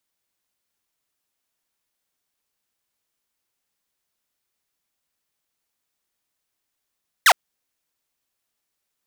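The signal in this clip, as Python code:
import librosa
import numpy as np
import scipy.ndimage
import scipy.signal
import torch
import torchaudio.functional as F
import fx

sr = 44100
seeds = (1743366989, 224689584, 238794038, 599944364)

y = fx.laser_zap(sr, level_db=-7, start_hz=2100.0, end_hz=610.0, length_s=0.06, wave='saw')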